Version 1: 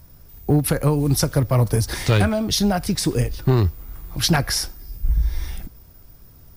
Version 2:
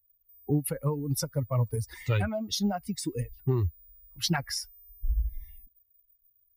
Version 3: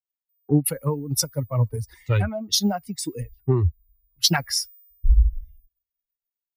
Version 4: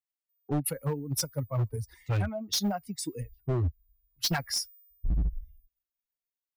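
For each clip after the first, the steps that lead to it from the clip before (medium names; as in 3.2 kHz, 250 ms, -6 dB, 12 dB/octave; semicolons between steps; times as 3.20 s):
expander on every frequency bin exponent 2; trim -6.5 dB
three bands expanded up and down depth 100%; trim +3.5 dB
hard clipper -18 dBFS, distortion -8 dB; trim -5.5 dB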